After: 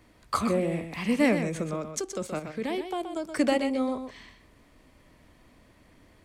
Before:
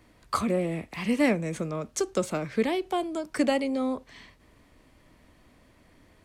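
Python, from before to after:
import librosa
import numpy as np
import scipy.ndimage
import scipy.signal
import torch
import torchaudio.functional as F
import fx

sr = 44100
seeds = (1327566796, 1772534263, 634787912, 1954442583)

y = fx.level_steps(x, sr, step_db=10, at=(1.91, 3.2))
y = y + 10.0 ** (-8.5 / 20.0) * np.pad(y, (int(125 * sr / 1000.0), 0))[:len(y)]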